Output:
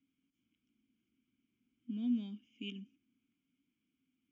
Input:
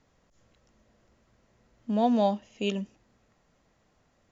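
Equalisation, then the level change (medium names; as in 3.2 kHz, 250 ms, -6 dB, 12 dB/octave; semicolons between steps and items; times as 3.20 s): vowel filter i; static phaser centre 2.8 kHz, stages 8; +1.0 dB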